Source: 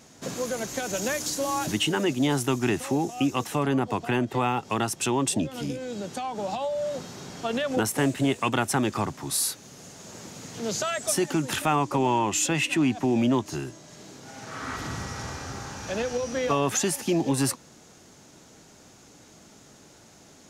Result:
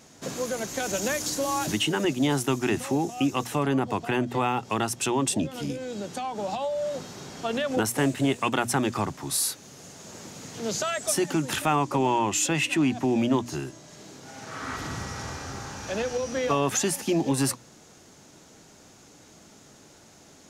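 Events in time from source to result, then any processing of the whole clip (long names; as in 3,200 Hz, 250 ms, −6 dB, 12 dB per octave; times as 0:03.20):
0:00.80–0:02.05: multiband upward and downward compressor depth 40%
whole clip: mains-hum notches 60/120/180/240 Hz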